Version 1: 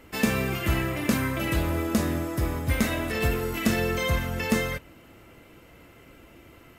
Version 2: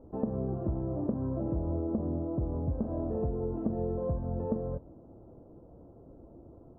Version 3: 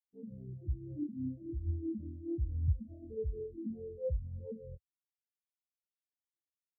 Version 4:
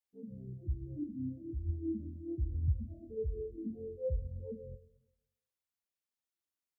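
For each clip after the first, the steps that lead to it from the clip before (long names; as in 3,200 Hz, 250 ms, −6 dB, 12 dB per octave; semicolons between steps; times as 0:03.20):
inverse Chebyshev low-pass filter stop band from 2,000 Hz, stop band 50 dB; downward compressor, threshold −28 dBFS, peak gain reduction 10 dB
brickwall limiter −26.5 dBFS, peak gain reduction 8.5 dB; pitch vibrato 1.4 Hz 24 cents; every bin expanded away from the loudest bin 4 to 1; level +5 dB
convolution reverb RT60 0.95 s, pre-delay 18 ms, DRR 11.5 dB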